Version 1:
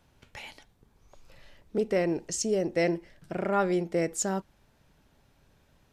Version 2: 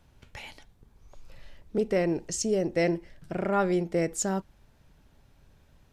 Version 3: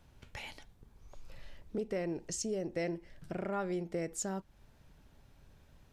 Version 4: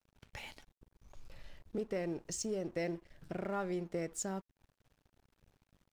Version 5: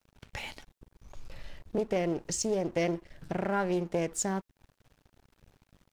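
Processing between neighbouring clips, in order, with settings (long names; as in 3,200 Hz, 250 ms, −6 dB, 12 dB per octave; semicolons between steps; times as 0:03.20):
low-shelf EQ 110 Hz +8.5 dB
downward compressor 2 to 1, threshold −38 dBFS, peak gain reduction 10 dB; level −1.5 dB
dead-zone distortion −57.5 dBFS; level −1 dB
highs frequency-modulated by the lows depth 0.26 ms; level +8 dB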